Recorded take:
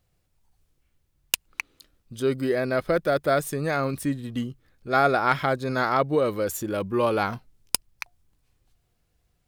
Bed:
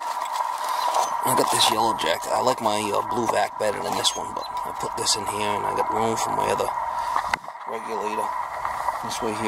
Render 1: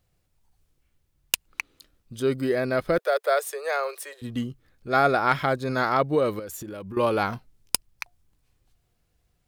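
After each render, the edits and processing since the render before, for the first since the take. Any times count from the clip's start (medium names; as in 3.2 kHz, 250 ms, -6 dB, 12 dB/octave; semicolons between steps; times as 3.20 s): 2.98–4.22 s: steep high-pass 410 Hz 72 dB/octave; 6.39–6.97 s: compression 10:1, threshold -33 dBFS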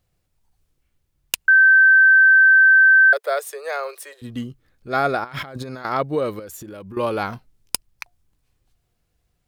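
1.48–3.13 s: bleep 1.55 kHz -8.5 dBFS; 5.24–5.85 s: compressor with a negative ratio -34 dBFS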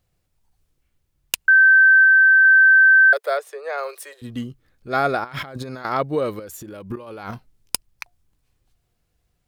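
2.04–2.45 s: distance through air 110 m; 3.37–3.78 s: low-pass 2.1 kHz 6 dB/octave; 6.90–7.31 s: compressor with a negative ratio -34 dBFS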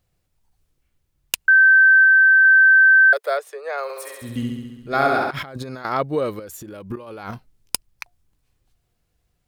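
3.83–5.31 s: flutter echo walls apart 11.6 m, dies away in 1.2 s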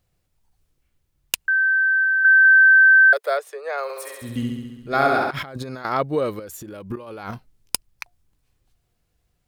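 1.48–2.25 s: band-pass filter 2 kHz, Q 3.7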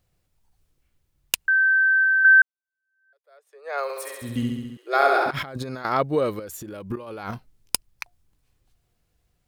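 2.42–3.77 s: fade in exponential; 4.77–5.26 s: brick-wall FIR high-pass 300 Hz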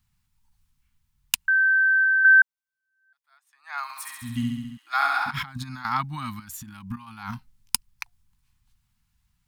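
elliptic band-stop 240–880 Hz, stop band 50 dB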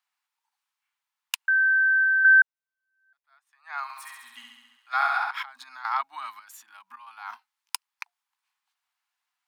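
steep high-pass 480 Hz 36 dB/octave; treble shelf 4.2 kHz -10.5 dB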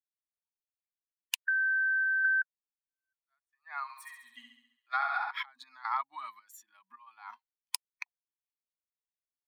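expander on every frequency bin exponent 1.5; compression 6:1, threshold -27 dBFS, peak gain reduction 12 dB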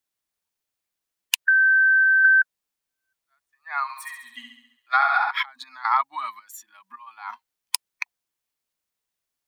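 trim +11.5 dB; peak limiter -2 dBFS, peak gain reduction 2 dB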